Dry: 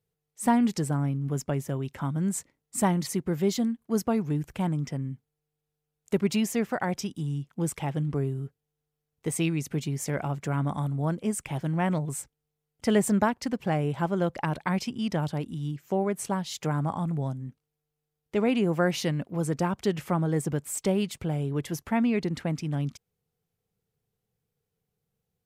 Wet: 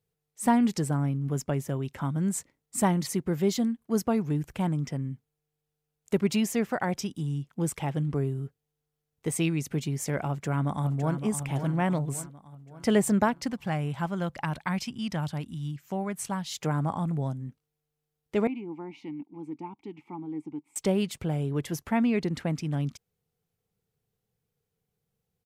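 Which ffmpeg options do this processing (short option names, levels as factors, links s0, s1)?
-filter_complex "[0:a]asplit=2[s0][s1];[s1]afade=t=in:st=10.28:d=0.01,afade=t=out:st=11.21:d=0.01,aecho=0:1:560|1120|1680|2240|2800|3360:0.375837|0.187919|0.0939594|0.0469797|0.0234898|0.0117449[s2];[s0][s2]amix=inputs=2:normalize=0,asettb=1/sr,asplit=3[s3][s4][s5];[s3]atrim=end=13.524[s6];[s4]atrim=start=13.52:end=16.52,asetpts=PTS-STARTPTS,afade=t=in:d=0.004:c=qsin,afade=t=out:st=2.996:d=0.004:c=qsin,equalizer=f=420:t=o:w=1.4:g=-9[s7];[s5]atrim=start=16.516[s8];[s6][s7]acrossfade=d=0.004:c1=hsin:c2=qsin[s9];[s9][s8]acrossfade=d=0.004:c1=qsin:c2=hsin,asettb=1/sr,asplit=3[s10][s11][s12];[s10]atrim=end=18.474[s13];[s11]atrim=start=18.47:end=20.76,asetpts=PTS-STARTPTS,afade=t=in:d=0.004:c=qsin,afade=t=out:st=2.286:d=0.004:c=qsin,asplit=3[s14][s15][s16];[s14]bandpass=f=300:t=q:w=8,volume=1[s17];[s15]bandpass=f=870:t=q:w=8,volume=0.501[s18];[s16]bandpass=f=2240:t=q:w=8,volume=0.355[s19];[s17][s18][s19]amix=inputs=3:normalize=0[s20];[s12]atrim=start=20.756[s21];[s13][s20]acrossfade=d=0.004:c1=hsin:c2=qsin[s22];[s22][s21]acrossfade=d=0.004:c1=qsin:c2=hsin"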